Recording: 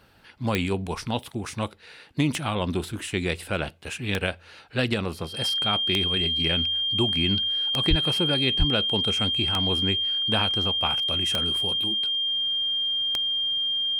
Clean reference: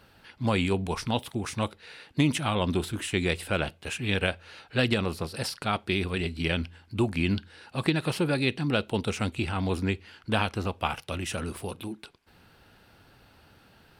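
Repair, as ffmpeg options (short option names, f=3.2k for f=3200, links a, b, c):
-filter_complex "[0:a]adeclick=t=4,bandreject=f=3.2k:w=30,asplit=3[a][b][c];[a]afade=t=out:st=7.89:d=0.02[d];[b]highpass=f=140:w=0.5412,highpass=f=140:w=1.3066,afade=t=in:st=7.89:d=0.02,afade=t=out:st=8.01:d=0.02[e];[c]afade=t=in:st=8.01:d=0.02[f];[d][e][f]amix=inputs=3:normalize=0,asplit=3[g][h][i];[g]afade=t=out:st=8.58:d=0.02[j];[h]highpass=f=140:w=0.5412,highpass=f=140:w=1.3066,afade=t=in:st=8.58:d=0.02,afade=t=out:st=8.7:d=0.02[k];[i]afade=t=in:st=8.7:d=0.02[l];[j][k][l]amix=inputs=3:normalize=0"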